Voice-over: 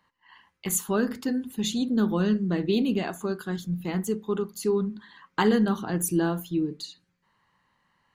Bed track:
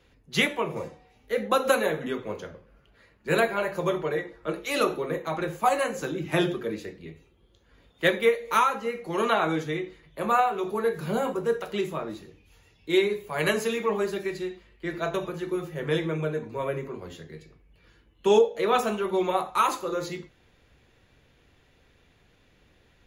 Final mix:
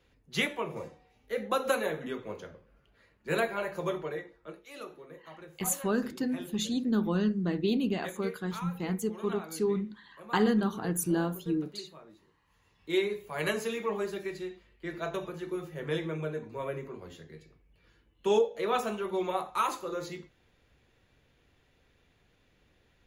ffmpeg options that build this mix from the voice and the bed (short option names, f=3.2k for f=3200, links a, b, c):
-filter_complex "[0:a]adelay=4950,volume=-4dB[a];[1:a]volume=7.5dB,afade=t=out:st=3.9:d=0.75:silence=0.211349,afade=t=in:st=12.45:d=0.43:silence=0.211349[b];[a][b]amix=inputs=2:normalize=0"